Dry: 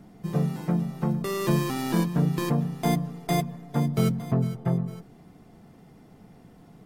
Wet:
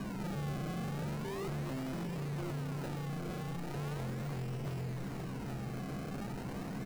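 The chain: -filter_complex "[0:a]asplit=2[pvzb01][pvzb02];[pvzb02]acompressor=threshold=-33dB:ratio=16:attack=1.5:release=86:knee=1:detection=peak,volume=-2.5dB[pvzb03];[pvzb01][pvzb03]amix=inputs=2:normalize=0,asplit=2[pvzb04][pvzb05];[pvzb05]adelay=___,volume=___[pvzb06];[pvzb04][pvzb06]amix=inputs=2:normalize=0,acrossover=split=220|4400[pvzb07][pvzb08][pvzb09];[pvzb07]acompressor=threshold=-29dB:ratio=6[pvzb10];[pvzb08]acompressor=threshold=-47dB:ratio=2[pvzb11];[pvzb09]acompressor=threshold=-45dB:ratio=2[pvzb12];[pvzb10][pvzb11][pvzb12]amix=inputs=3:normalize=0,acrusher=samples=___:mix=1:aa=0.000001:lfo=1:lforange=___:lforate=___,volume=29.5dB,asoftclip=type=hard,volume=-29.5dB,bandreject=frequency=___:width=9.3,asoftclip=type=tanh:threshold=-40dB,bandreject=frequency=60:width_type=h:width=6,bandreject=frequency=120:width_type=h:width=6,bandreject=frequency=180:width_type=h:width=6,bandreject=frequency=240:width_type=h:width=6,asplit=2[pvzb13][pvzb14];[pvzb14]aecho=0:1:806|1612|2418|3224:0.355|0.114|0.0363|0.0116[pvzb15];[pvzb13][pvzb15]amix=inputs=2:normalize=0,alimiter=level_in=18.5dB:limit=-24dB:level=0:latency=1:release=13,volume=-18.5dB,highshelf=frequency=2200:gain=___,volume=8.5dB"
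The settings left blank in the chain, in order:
15, -7dB, 32, 32, 0.38, 3400, -4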